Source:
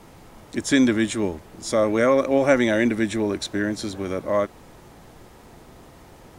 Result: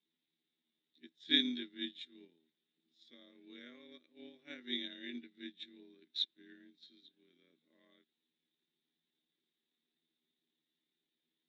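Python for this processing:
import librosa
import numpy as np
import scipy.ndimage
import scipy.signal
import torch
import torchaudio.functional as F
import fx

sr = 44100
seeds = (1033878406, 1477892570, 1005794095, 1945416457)

y = fx.ladder_lowpass(x, sr, hz=3800.0, resonance_pct=85)
y = fx.stretch_grains(y, sr, factor=1.8, grain_ms=56.0)
y = scipy.signal.sosfilt(scipy.signal.butter(4, 200.0, 'highpass', fs=sr, output='sos'), y)
y = fx.band_shelf(y, sr, hz=800.0, db=-15.0, octaves=1.7)
y = fx.upward_expand(y, sr, threshold_db=-42.0, expansion=2.5)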